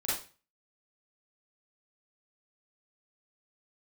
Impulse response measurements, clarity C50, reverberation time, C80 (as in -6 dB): -0.5 dB, 0.35 s, 7.5 dB